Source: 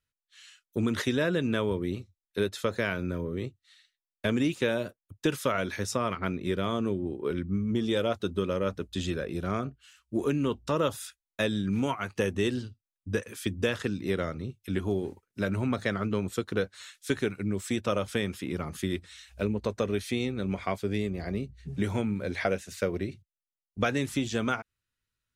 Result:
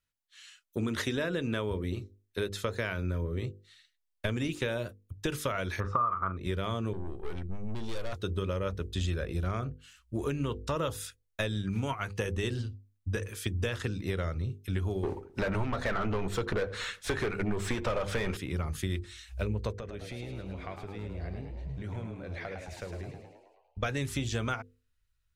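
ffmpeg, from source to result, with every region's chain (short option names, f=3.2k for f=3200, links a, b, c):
-filter_complex "[0:a]asettb=1/sr,asplit=3[a][b][c];[a]atrim=end=5.804[d];[b]atrim=start=5.8:end=6.37,asetpts=PTS-STARTPTS,afade=t=in:d=0.004:c=qsin,afade=t=out:st=0.566:d=0.004:c=qsin,lowpass=f=1.2k:t=q:w=12,asplit=2[e][f];[f]adelay=42,volume=-11.5dB[g];[e][g]amix=inputs=2:normalize=0,atrim=end_sample=25137[h];[c]atrim=start=6.366[i];[d][h]acrossfade=d=0.004:c1=hsin:c2=qsin[j];[j][i]acrossfade=d=0.004:c1=qsin:c2=hsin,asettb=1/sr,asplit=3[k][l][m];[k]atrim=end=6.934[n];[l]atrim=start=6.93:end=8.13,asetpts=PTS-STARTPTS,afade=t=in:d=0.004:c=qsin,afade=t=out:st=1.196:d=0.004:c=qsin,equalizer=f=71:t=o:w=2.9:g=-6,aeval=exprs='(tanh(44.7*val(0)+0.4)-tanh(0.4))/44.7':c=same[o];[m]atrim=start=8.126[p];[n][o]acrossfade=d=0.004:c1=hsin:c2=qsin[q];[q][p]acrossfade=d=0.004:c1=qsin:c2=hsin,asettb=1/sr,asplit=3[r][s][t];[r]atrim=end=15.034[u];[s]atrim=start=15.03:end=18.37,asetpts=PTS-STARTPTS,afade=t=in:d=0.004:c=qsin,afade=t=out:st=3.336:d=0.004:c=qsin,asplit=2[v][w];[w]highpass=f=720:p=1,volume=26dB,asoftclip=type=tanh:threshold=-13.5dB[x];[v][x]amix=inputs=2:normalize=0,lowpass=f=1.1k:p=1,volume=-6dB,asplit=2[y][z];[z]adelay=87,lowpass=f=910:p=1,volume=-16dB,asplit=2[aa][ab];[ab]adelay=87,lowpass=f=910:p=1,volume=0.47,asplit=2[ac][ad];[ad]adelay=87,lowpass=f=910:p=1,volume=0.47,asplit=2[ae][af];[af]adelay=87,lowpass=f=910:p=1,volume=0.47[ag];[y][aa][ac][ae][ag]amix=inputs=5:normalize=0,atrim=end_sample=147294[ah];[t]atrim=start=18.366[ai];[u][ah]acrossfade=d=0.004:c1=hsin:c2=qsin[aj];[aj][ai]acrossfade=d=0.004:c1=qsin:c2=hsin,asettb=1/sr,asplit=3[ak][al][am];[ak]atrim=end=19.724[an];[al]atrim=start=19.72:end=23.83,asetpts=PTS-STARTPTS,afade=t=in:d=0.004:c=qsin,afade=t=out:st=4.106:d=0.004:c=qsin,lowpass=f=2.7k:p=1,acompressor=threshold=-43dB:ratio=2:attack=3.2:release=140:knee=1:detection=peak,asplit=8[ao][ap][aq][ar][as][at][au][av];[ap]adelay=106,afreqshift=74,volume=-7dB[aw];[aq]adelay=212,afreqshift=148,volume=-11.9dB[ax];[ar]adelay=318,afreqshift=222,volume=-16.8dB[ay];[as]adelay=424,afreqshift=296,volume=-21.6dB[az];[at]adelay=530,afreqshift=370,volume=-26.5dB[ba];[au]adelay=636,afreqshift=444,volume=-31.4dB[bb];[av]adelay=742,afreqshift=518,volume=-36.3dB[bc];[ao][aw][ax][ay][az][ba][bb][bc]amix=inputs=8:normalize=0,atrim=end_sample=181251[bd];[am]atrim=start=23.826[be];[an][bd]acrossfade=d=0.004:c1=hsin:c2=qsin[bf];[bf][be]acrossfade=d=0.004:c1=qsin:c2=hsin,bandreject=f=50:t=h:w=6,bandreject=f=100:t=h:w=6,bandreject=f=150:t=h:w=6,bandreject=f=200:t=h:w=6,bandreject=f=250:t=h:w=6,bandreject=f=300:t=h:w=6,bandreject=f=350:t=h:w=6,bandreject=f=400:t=h:w=6,bandreject=f=450:t=h:w=6,bandreject=f=500:t=h:w=6,asubboost=boost=7.5:cutoff=80,acompressor=threshold=-27dB:ratio=6"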